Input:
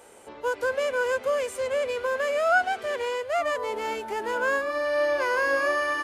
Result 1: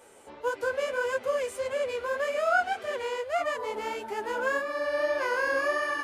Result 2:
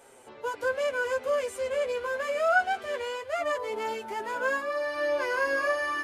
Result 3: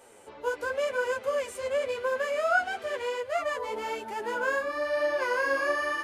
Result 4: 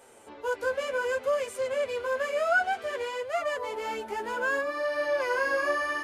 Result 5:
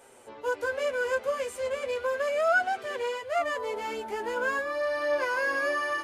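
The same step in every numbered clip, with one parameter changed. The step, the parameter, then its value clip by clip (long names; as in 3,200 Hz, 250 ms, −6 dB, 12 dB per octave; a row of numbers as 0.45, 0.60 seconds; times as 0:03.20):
flanger, speed: 1.7, 0.23, 0.95, 0.6, 0.35 Hertz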